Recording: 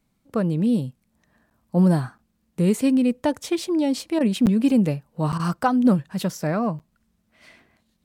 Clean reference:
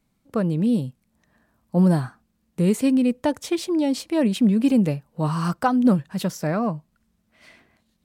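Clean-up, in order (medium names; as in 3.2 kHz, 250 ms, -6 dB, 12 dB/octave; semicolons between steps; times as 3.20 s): interpolate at 1.50/2.18/4.46/5.32/6.79 s, 8.5 ms; interpolate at 4.19/5.38 s, 14 ms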